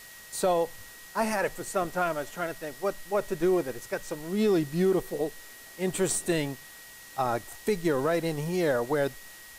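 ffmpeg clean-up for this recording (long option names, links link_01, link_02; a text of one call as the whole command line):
ffmpeg -i in.wav -af "bandreject=frequency=1900:width=30,afftdn=noise_reduction=25:noise_floor=-48" out.wav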